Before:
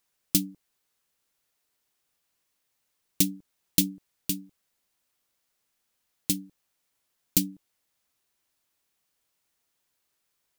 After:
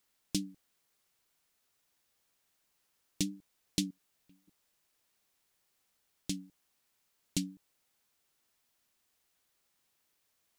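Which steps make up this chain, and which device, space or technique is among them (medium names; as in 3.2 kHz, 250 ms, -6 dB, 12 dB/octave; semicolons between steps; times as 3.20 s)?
worn cassette (low-pass 6.8 kHz 12 dB/octave; wow and flutter; level dips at 3.91/4.27 s, 203 ms -25 dB; white noise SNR 32 dB); trim -6.5 dB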